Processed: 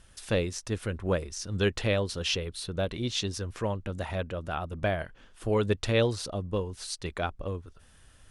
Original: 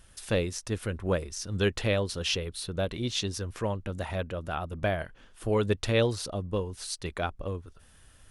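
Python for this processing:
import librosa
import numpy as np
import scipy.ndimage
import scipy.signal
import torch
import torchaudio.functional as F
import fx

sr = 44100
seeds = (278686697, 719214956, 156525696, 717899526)

y = scipy.signal.sosfilt(scipy.signal.butter(2, 10000.0, 'lowpass', fs=sr, output='sos'), x)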